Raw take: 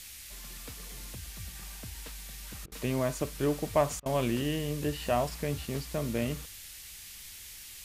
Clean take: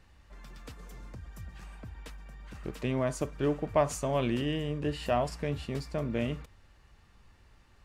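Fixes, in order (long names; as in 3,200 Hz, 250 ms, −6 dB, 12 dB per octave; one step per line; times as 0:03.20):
repair the gap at 0:02.66/0:04.00, 57 ms
noise reduction from a noise print 12 dB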